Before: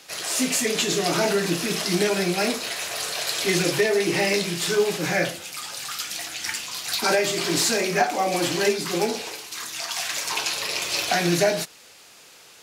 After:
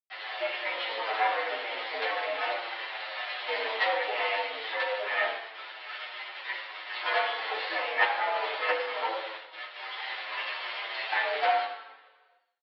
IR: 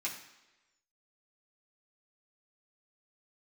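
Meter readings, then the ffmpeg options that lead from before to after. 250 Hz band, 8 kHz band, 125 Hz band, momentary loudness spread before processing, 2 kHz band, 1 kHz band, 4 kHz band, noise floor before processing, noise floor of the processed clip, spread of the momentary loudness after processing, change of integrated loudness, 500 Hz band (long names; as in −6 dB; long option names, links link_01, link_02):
−27.5 dB, below −40 dB, below −40 dB, 8 LU, −2.5 dB, −1.0 dB, −9.0 dB, −49 dBFS, −60 dBFS, 11 LU, −7.0 dB, −10.0 dB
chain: -filter_complex "[0:a]highshelf=frequency=2700:gain=-5,aresample=11025,acrusher=bits=3:dc=4:mix=0:aa=0.000001,aresample=44100[link_01];[1:a]atrim=start_sample=2205,asetrate=34839,aresample=44100[link_02];[link_01][link_02]afir=irnorm=-1:irlink=0,highpass=frequency=360:width_type=q:width=0.5412,highpass=frequency=360:width_type=q:width=1.307,lowpass=frequency=3600:width_type=q:width=0.5176,lowpass=frequency=3600:width_type=q:width=0.7071,lowpass=frequency=3600:width_type=q:width=1.932,afreqshift=99,asplit=2[link_03][link_04];[link_04]adelay=8.4,afreqshift=-1.1[link_05];[link_03][link_05]amix=inputs=2:normalize=1"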